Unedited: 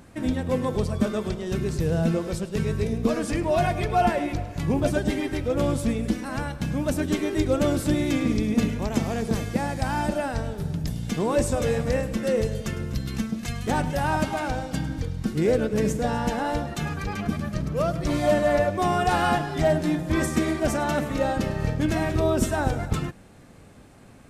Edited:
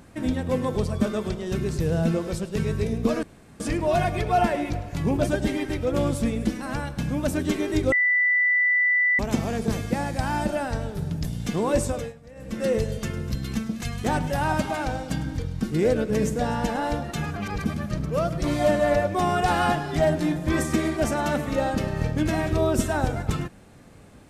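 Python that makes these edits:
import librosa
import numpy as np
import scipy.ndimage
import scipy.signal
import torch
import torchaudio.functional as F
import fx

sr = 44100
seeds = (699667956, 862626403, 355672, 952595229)

y = fx.edit(x, sr, fx.insert_room_tone(at_s=3.23, length_s=0.37),
    fx.bleep(start_s=7.55, length_s=1.27, hz=1980.0, db=-17.5),
    fx.fade_down_up(start_s=11.46, length_s=0.83, db=-22.0, fade_s=0.31),
    fx.reverse_span(start_s=16.99, length_s=0.28), tone=tone)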